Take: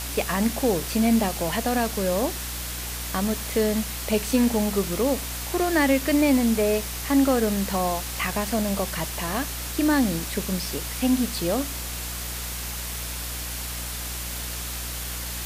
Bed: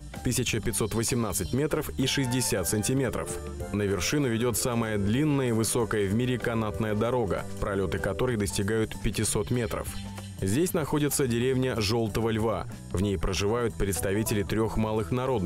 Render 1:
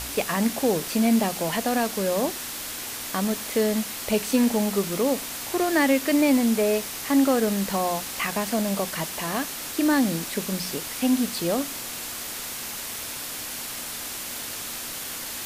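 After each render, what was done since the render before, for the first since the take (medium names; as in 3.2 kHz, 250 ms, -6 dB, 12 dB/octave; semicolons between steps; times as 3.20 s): de-hum 60 Hz, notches 3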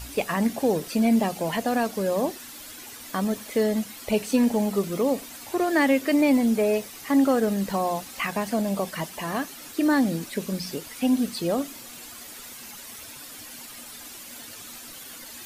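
noise reduction 11 dB, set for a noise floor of -34 dBFS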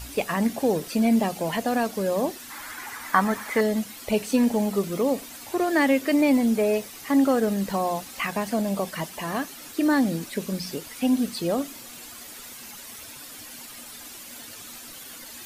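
2.50–3.61 s: high-order bell 1.3 kHz +12.5 dB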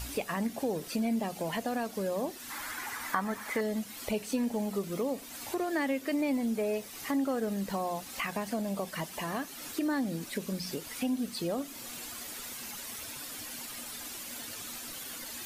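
compression 2:1, threshold -36 dBFS, peak gain reduction 12 dB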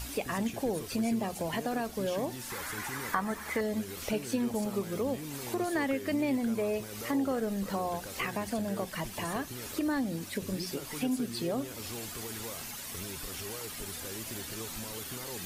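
add bed -17 dB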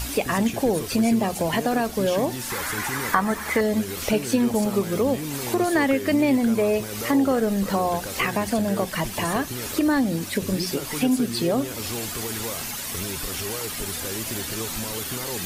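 trim +10 dB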